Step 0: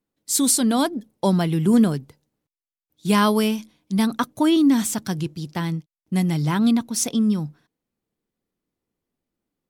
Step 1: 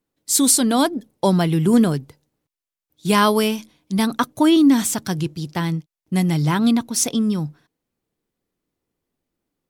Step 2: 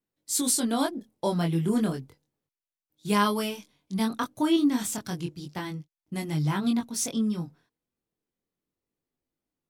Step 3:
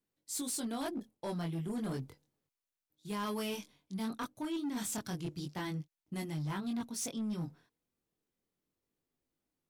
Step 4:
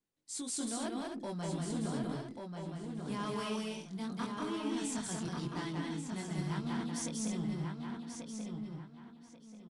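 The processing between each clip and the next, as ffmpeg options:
-af "equalizer=f=210:t=o:w=0.31:g=-4.5,volume=1.5"
-af "flanger=delay=19.5:depth=4.5:speed=0.32,volume=0.501"
-af "areverse,acompressor=threshold=0.0178:ratio=5,areverse,volume=42.2,asoftclip=hard,volume=0.0237"
-filter_complex "[0:a]asplit=2[s0][s1];[s1]adelay=1137,lowpass=f=4700:p=1,volume=0.596,asplit=2[s2][s3];[s3]adelay=1137,lowpass=f=4700:p=1,volume=0.29,asplit=2[s4][s5];[s5]adelay=1137,lowpass=f=4700:p=1,volume=0.29,asplit=2[s6][s7];[s7]adelay=1137,lowpass=f=4700:p=1,volume=0.29[s8];[s2][s4][s6][s8]amix=inputs=4:normalize=0[s9];[s0][s9]amix=inputs=2:normalize=0,aresample=22050,aresample=44100,asplit=2[s10][s11];[s11]aecho=0:1:189.5|259.5:0.794|0.447[s12];[s10][s12]amix=inputs=2:normalize=0,volume=0.75"

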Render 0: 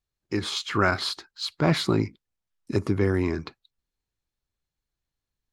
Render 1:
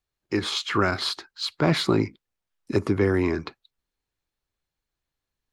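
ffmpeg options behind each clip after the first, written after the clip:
-filter_complex "[0:a]bass=f=250:g=-5,treble=f=4000:g=-4,acrossover=split=400|3000[s0][s1][s2];[s1]acompressor=threshold=0.0501:ratio=6[s3];[s0][s3][s2]amix=inputs=3:normalize=0,volume=1.58"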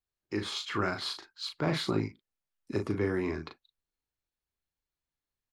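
-filter_complex "[0:a]asplit=2[s0][s1];[s1]adelay=38,volume=0.501[s2];[s0][s2]amix=inputs=2:normalize=0,volume=0.355"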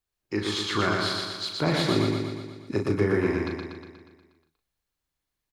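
-af "aecho=1:1:120|240|360|480|600|720|840|960|1080:0.708|0.418|0.246|0.145|0.0858|0.0506|0.0299|0.0176|0.0104,volume=1.68"

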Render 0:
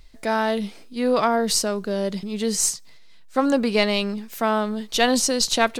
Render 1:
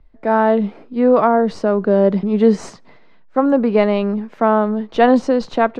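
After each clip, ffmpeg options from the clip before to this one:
-filter_complex "[0:a]lowpass=1200,acrossover=split=140[s0][s1];[s1]dynaudnorm=f=170:g=3:m=6.68[s2];[s0][s2]amix=inputs=2:normalize=0,volume=0.891"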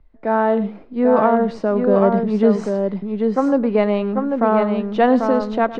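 -filter_complex "[0:a]lowpass=f=3500:p=1,asplit=2[s0][s1];[s1]aecho=0:1:107|792:0.158|0.596[s2];[s0][s2]amix=inputs=2:normalize=0,volume=0.75"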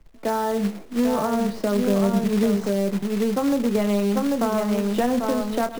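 -filter_complex "[0:a]asplit=2[s0][s1];[s1]adelay=25,volume=0.422[s2];[s0][s2]amix=inputs=2:normalize=0,acrusher=bits=3:mode=log:mix=0:aa=0.000001,acrossover=split=190[s3][s4];[s4]acompressor=threshold=0.0891:ratio=6[s5];[s3][s5]amix=inputs=2:normalize=0"

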